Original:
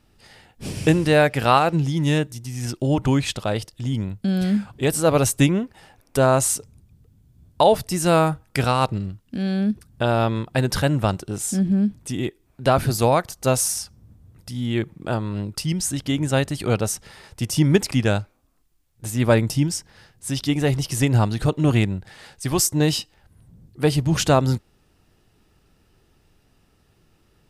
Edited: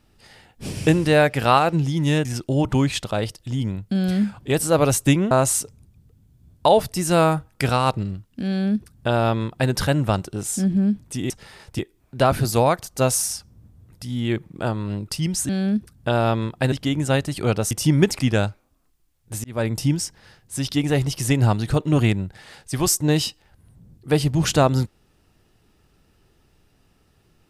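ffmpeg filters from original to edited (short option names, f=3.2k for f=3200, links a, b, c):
-filter_complex "[0:a]asplit=9[a][b][c][d][e][f][g][h][i];[a]atrim=end=2.252[j];[b]atrim=start=2.578:end=5.642[k];[c]atrim=start=6.258:end=12.252[l];[d]atrim=start=16.938:end=17.432[m];[e]atrim=start=12.248:end=15.952[n];[f]atrim=start=9.428:end=10.662[o];[g]atrim=start=15.948:end=16.942[p];[h]atrim=start=17.428:end=19.16,asetpts=PTS-STARTPTS,afade=t=out:st=1.728:d=0.004:c=hsin[q];[i]atrim=start=19.16,asetpts=PTS-STARTPTS,afade=t=in:d=0.39[r];[j][k]acrossfade=d=0.004:c1=hsin:c2=hsin[s];[s][l]acrossfade=d=0.004:c1=hsin:c2=hsin[t];[t][m]acrossfade=d=0.004:c1=hsin:c2=hsin[u];[u][n]acrossfade=d=0.004:c1=hsin:c2=hsin[v];[v][o]acrossfade=d=0.004:c1=hsin:c2=hsin[w];[w][p]acrossfade=d=0.004:c1=hsin:c2=hsin[x];[q][r]concat=n=2:v=0:a=1[y];[x][y]acrossfade=d=0.004:c1=hsin:c2=hsin"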